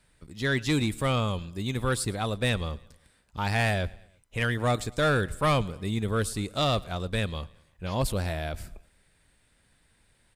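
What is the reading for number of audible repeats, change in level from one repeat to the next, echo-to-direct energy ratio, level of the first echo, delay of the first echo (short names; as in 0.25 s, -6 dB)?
3, -5.5 dB, -22.0 dB, -23.5 dB, 0.11 s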